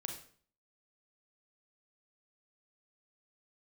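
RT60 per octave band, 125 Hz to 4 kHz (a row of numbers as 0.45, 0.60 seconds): 0.60, 0.55, 0.50, 0.50, 0.45, 0.45 seconds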